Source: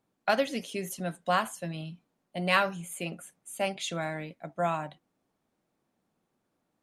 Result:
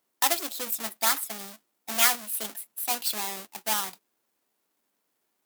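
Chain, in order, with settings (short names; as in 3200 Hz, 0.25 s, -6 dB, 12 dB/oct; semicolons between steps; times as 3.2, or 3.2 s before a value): half-waves squared off; RIAA curve recording; varispeed +25%; gain -4.5 dB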